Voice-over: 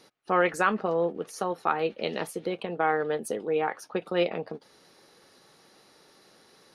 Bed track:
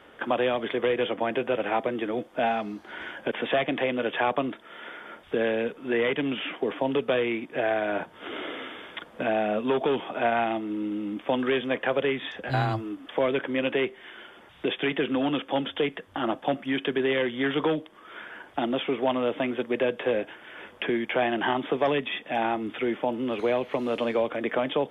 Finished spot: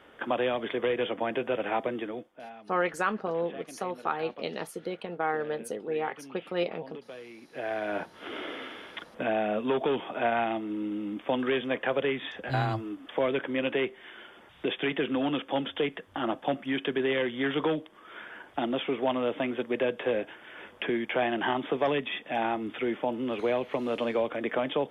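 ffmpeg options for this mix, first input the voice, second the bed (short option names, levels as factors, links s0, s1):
-filter_complex "[0:a]adelay=2400,volume=0.631[s0];[1:a]volume=5.01,afade=t=out:st=1.93:d=0.43:silence=0.149624,afade=t=in:st=7.35:d=0.67:silence=0.141254[s1];[s0][s1]amix=inputs=2:normalize=0"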